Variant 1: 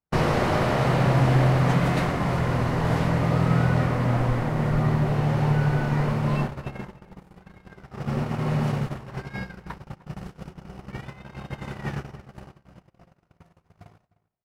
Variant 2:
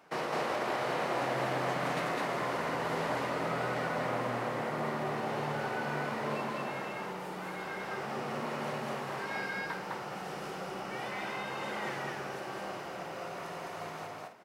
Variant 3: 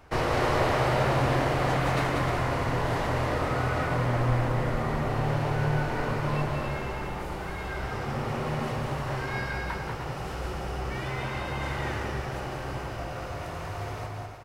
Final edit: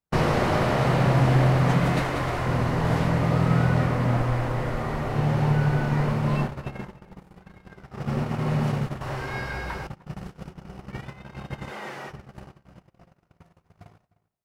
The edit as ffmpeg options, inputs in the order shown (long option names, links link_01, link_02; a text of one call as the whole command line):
ffmpeg -i take0.wav -i take1.wav -i take2.wav -filter_complex "[2:a]asplit=3[link_01][link_02][link_03];[0:a]asplit=5[link_04][link_05][link_06][link_07][link_08];[link_04]atrim=end=2.022[link_09];[link_01]atrim=start=2.018:end=2.462[link_10];[link_05]atrim=start=2.458:end=4.222[link_11];[link_02]atrim=start=4.218:end=5.152[link_12];[link_06]atrim=start=5.148:end=9.012[link_13];[link_03]atrim=start=9.008:end=9.872[link_14];[link_07]atrim=start=9.868:end=11.72[link_15];[1:a]atrim=start=11.66:end=12.13[link_16];[link_08]atrim=start=12.07[link_17];[link_09][link_10]acrossfade=duration=0.004:curve1=hsin:curve2=hsin[link_18];[link_18][link_11]acrossfade=duration=0.004:curve1=hsin:curve2=hsin[link_19];[link_19][link_12]acrossfade=duration=0.004:curve1=hsin:curve2=hsin[link_20];[link_20][link_13]acrossfade=duration=0.004:curve1=hsin:curve2=hsin[link_21];[link_21][link_14]acrossfade=duration=0.004:curve1=hsin:curve2=hsin[link_22];[link_22][link_15]acrossfade=duration=0.004:curve1=hsin:curve2=hsin[link_23];[link_23][link_16]acrossfade=duration=0.06:curve1=tri:curve2=tri[link_24];[link_24][link_17]acrossfade=duration=0.06:curve1=tri:curve2=tri" out.wav